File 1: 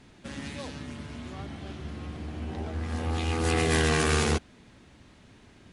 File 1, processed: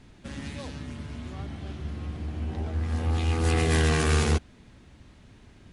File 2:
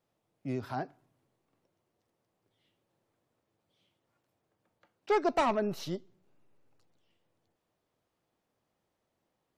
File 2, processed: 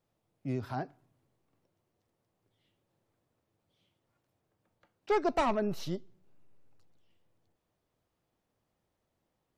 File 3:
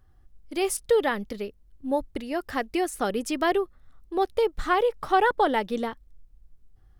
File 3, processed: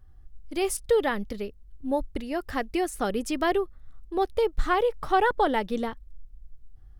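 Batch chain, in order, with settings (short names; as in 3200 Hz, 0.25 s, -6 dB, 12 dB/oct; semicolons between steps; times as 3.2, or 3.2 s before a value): low shelf 110 Hz +10 dB; gain -1.5 dB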